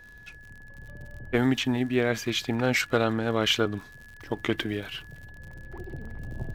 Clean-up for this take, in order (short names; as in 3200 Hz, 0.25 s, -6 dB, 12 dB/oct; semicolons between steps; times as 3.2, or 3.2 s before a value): clip repair -9.5 dBFS; de-click; notch 1700 Hz, Q 30